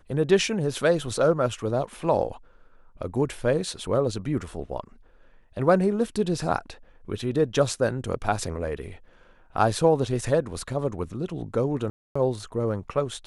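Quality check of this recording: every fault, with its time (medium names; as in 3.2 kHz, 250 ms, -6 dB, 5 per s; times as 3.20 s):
11.90–12.15 s: dropout 255 ms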